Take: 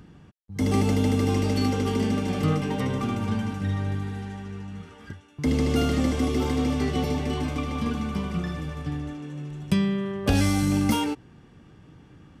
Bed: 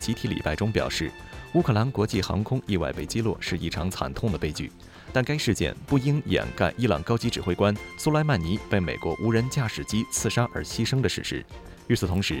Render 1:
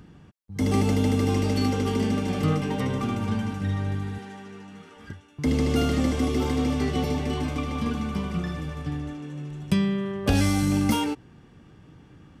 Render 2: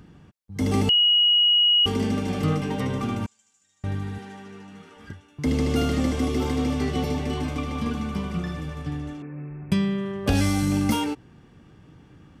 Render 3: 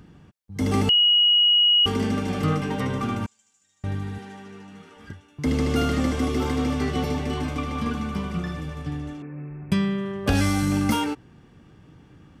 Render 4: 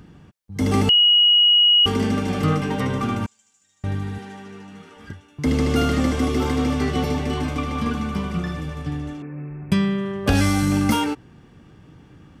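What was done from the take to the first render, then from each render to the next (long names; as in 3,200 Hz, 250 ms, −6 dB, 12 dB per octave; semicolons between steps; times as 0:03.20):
0:04.18–0:04.97: high-pass filter 240 Hz
0:00.89–0:01.86: beep over 2,900 Hz −15 dBFS; 0:03.26–0:03.84: resonant band-pass 7,200 Hz, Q 10; 0:09.22–0:09.72: Chebyshev low-pass filter 2,600 Hz, order 10
dynamic equaliser 1,400 Hz, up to +5 dB, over −41 dBFS, Q 1.5
level +3 dB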